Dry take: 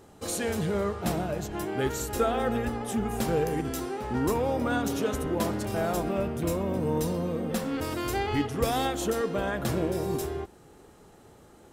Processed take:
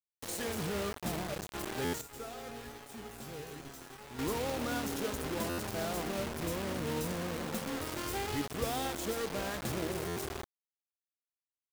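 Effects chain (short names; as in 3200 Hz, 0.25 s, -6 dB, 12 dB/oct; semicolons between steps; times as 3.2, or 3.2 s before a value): bit-crush 5-bit; 2.01–4.19 resonator 140 Hz, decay 0.32 s, harmonics all, mix 80%; stuck buffer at 1.84/5.49/10.07, samples 512, times 7; gain -8.5 dB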